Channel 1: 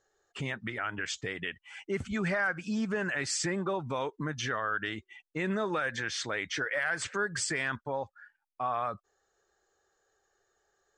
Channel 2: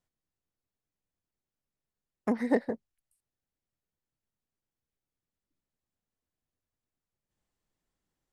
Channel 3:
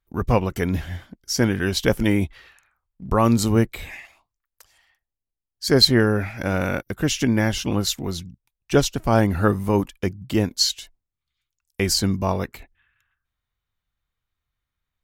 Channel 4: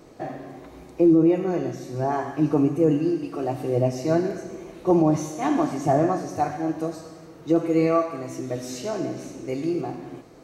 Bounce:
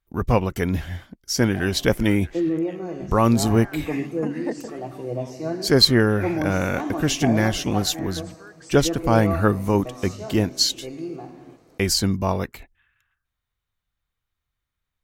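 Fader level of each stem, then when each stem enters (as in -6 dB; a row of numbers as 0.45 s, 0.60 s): -14.5 dB, -3.5 dB, 0.0 dB, -6.5 dB; 1.25 s, 1.95 s, 0.00 s, 1.35 s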